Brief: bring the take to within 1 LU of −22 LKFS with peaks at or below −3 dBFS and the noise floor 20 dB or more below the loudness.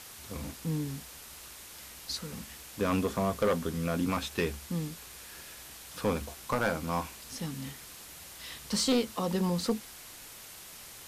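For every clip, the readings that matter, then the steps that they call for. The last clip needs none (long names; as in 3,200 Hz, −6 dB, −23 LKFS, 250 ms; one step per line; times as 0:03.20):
share of clipped samples 0.5%; peaks flattened at −21.0 dBFS; background noise floor −48 dBFS; target noise floor −53 dBFS; integrated loudness −33.0 LKFS; sample peak −21.0 dBFS; target loudness −22.0 LKFS
→ clipped peaks rebuilt −21 dBFS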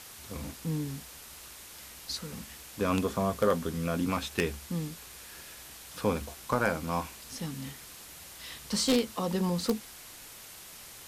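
share of clipped samples 0.0%; background noise floor −48 dBFS; target noise floor −52 dBFS
→ broadband denoise 6 dB, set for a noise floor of −48 dBFS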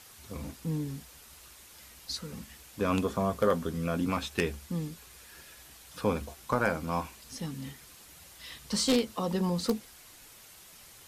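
background noise floor −53 dBFS; integrated loudness −32.0 LKFS; sample peak −12.0 dBFS; target loudness −22.0 LKFS
→ level +10 dB
brickwall limiter −3 dBFS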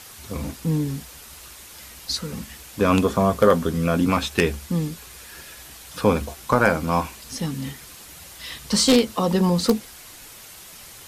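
integrated loudness −22.0 LKFS; sample peak −3.0 dBFS; background noise floor −43 dBFS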